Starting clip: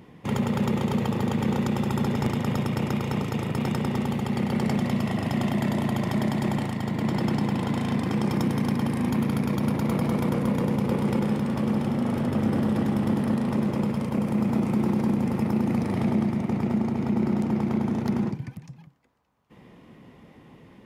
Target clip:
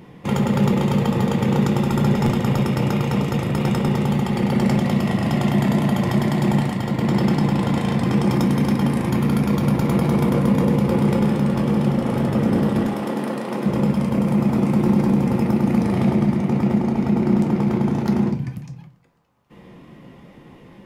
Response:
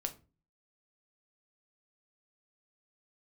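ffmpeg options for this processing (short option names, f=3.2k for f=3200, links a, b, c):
-filter_complex "[0:a]asettb=1/sr,asplit=3[a][b][c];[a]atrim=end=12.844[d];[b]atrim=start=12.84:end=13.66,asetpts=PTS-STARTPTS,afade=t=in:d=0.004:c=qsin,afade=t=out:st=0.816:d=0.004:c=qsin,highpass=310[e];[c]atrim=start=13.656[f];[d][e]acrossfade=d=0.004:c1=hsin:c2=qsin[g];[g][f]acrossfade=d=0.004:c1=qsin:c2=hsin[h];[1:a]atrim=start_sample=2205[i];[h][i]afir=irnorm=-1:irlink=0,volume=5.5dB"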